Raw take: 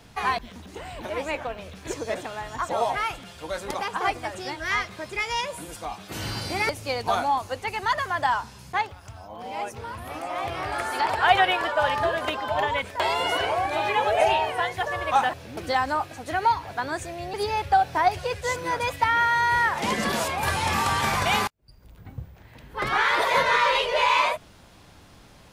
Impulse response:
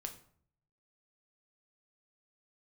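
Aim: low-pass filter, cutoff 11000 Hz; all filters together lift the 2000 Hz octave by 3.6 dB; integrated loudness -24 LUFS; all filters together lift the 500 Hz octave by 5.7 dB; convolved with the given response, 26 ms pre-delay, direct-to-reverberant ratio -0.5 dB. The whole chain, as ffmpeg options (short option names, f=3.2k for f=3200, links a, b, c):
-filter_complex "[0:a]lowpass=11k,equalizer=f=500:t=o:g=7,equalizer=f=2k:t=o:g=4,asplit=2[a][b];[1:a]atrim=start_sample=2205,adelay=26[c];[b][c]afir=irnorm=-1:irlink=0,volume=3dB[d];[a][d]amix=inputs=2:normalize=0,volume=-5.5dB"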